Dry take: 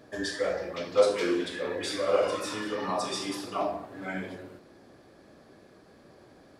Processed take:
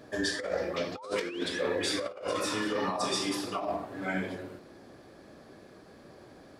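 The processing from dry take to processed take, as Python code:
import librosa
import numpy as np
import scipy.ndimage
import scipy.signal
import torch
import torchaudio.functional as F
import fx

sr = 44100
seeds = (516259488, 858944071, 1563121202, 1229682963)

y = fx.over_compress(x, sr, threshold_db=-31.0, ratio=-0.5)
y = fx.spec_paint(y, sr, seeds[0], shape='rise', start_s=0.6, length_s=0.98, low_hz=240.0, high_hz=6100.0, level_db=-47.0)
y = fx.end_taper(y, sr, db_per_s=220.0)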